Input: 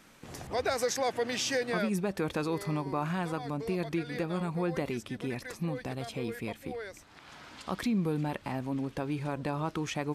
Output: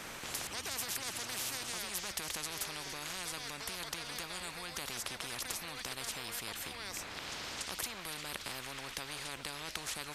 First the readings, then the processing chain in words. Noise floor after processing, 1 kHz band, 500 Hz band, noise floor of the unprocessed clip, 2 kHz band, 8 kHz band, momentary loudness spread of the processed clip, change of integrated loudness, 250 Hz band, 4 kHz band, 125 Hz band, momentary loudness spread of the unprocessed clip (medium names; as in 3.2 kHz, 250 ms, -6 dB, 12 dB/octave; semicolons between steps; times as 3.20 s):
-47 dBFS, -8.0 dB, -16.0 dB, -55 dBFS, -2.5 dB, +4.0 dB, 4 LU, -6.0 dB, -19.0 dB, +2.5 dB, -17.5 dB, 10 LU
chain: feedback echo behind a high-pass 287 ms, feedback 76%, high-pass 1.5 kHz, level -20.5 dB; spectrum-flattening compressor 10:1; trim +1 dB